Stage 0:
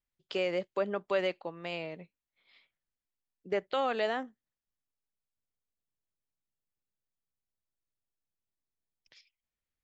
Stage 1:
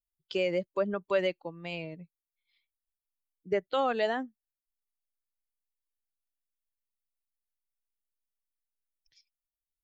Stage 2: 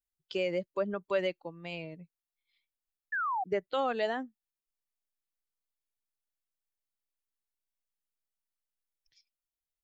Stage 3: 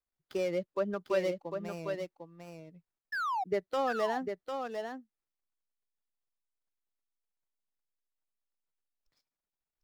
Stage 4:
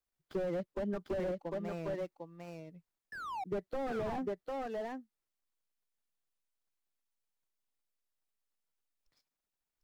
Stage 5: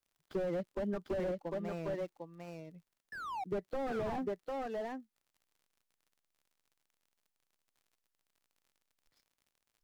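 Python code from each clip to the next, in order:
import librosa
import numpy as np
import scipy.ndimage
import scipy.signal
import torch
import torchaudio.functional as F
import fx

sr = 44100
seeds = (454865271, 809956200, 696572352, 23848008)

y1 = fx.bin_expand(x, sr, power=1.5)
y1 = fx.low_shelf(y1, sr, hz=200.0, db=6.5)
y1 = y1 * librosa.db_to_amplitude(3.0)
y2 = fx.spec_paint(y1, sr, seeds[0], shape='fall', start_s=3.12, length_s=0.32, low_hz=720.0, high_hz=1800.0, level_db=-29.0)
y2 = y2 * librosa.db_to_amplitude(-2.5)
y3 = scipy.ndimage.median_filter(y2, 15, mode='constant')
y3 = y3 + 10.0 ** (-6.0 / 20.0) * np.pad(y3, (int(750 * sr / 1000.0), 0))[:len(y3)]
y4 = fx.slew_limit(y3, sr, full_power_hz=9.9)
y4 = y4 * librosa.db_to_amplitude(1.0)
y5 = fx.dmg_crackle(y4, sr, seeds[1], per_s=56.0, level_db=-58.0)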